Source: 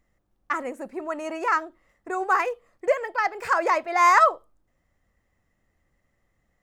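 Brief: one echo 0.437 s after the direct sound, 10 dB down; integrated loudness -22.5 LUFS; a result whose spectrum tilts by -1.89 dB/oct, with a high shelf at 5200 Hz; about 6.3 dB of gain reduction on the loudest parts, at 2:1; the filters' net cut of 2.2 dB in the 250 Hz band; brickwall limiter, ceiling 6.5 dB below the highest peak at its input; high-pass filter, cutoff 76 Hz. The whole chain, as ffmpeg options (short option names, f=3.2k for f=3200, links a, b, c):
-af "highpass=76,equalizer=f=250:t=o:g=-3.5,highshelf=f=5.2k:g=5.5,acompressor=threshold=-24dB:ratio=2,alimiter=limit=-18dB:level=0:latency=1,aecho=1:1:437:0.316,volume=7.5dB"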